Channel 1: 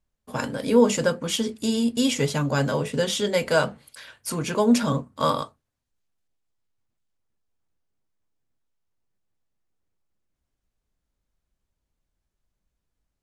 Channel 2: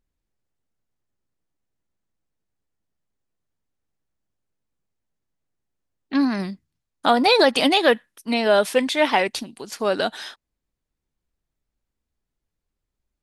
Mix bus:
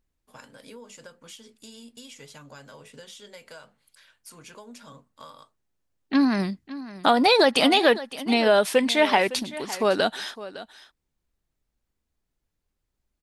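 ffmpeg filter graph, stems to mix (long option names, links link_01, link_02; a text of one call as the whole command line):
ffmpeg -i stem1.wav -i stem2.wav -filter_complex "[0:a]tiltshelf=frequency=690:gain=-5.5,acompressor=threshold=-25dB:ratio=6,volume=-17dB[link_01];[1:a]acompressor=threshold=-18dB:ratio=2,volume=1.5dB,asplit=2[link_02][link_03];[link_03]volume=-16dB,aecho=0:1:559:1[link_04];[link_01][link_02][link_04]amix=inputs=3:normalize=0" out.wav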